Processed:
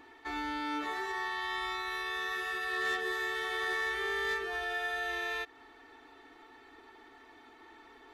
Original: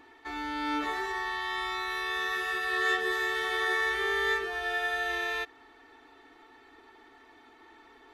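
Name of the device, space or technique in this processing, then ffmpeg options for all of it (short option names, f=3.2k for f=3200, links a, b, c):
clipper into limiter: -filter_complex "[0:a]asoftclip=type=hard:threshold=-23dB,alimiter=level_in=3.5dB:limit=-24dB:level=0:latency=1:release=170,volume=-3.5dB,asettb=1/sr,asplit=3[a][b][c];[a]atrim=end=0.604[d];[b]atrim=start=0.6:end=1.43,asetpts=PTS-STARTPTS,afade=t=in:d=0.004:c=qsin,afade=t=out:st=0.826:d=0.004:c=qsin,highpass=f=85:p=1[e];[c]atrim=start=1.426[f];[d][e]acrossfade=d=0.004:c1=hsin:c2=qsin[g];[g][f]acrossfade=d=0.004:c1=qsin:c2=hsin"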